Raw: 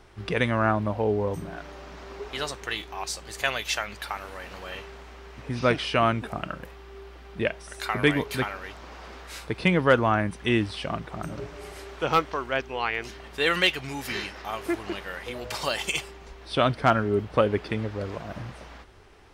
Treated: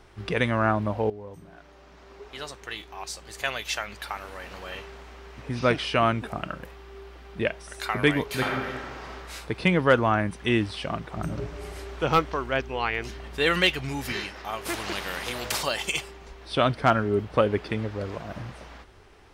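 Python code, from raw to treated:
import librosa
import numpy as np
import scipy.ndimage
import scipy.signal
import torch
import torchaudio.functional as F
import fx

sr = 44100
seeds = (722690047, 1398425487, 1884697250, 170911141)

y = fx.reverb_throw(x, sr, start_s=8.26, length_s=0.81, rt60_s=1.5, drr_db=-0.5)
y = fx.low_shelf(y, sr, hz=220.0, db=7.5, at=(11.17, 14.12))
y = fx.spectral_comp(y, sr, ratio=2.0, at=(14.65, 15.61), fade=0.02)
y = fx.edit(y, sr, fx.fade_in_from(start_s=1.1, length_s=3.43, floor_db=-15.5), tone=tone)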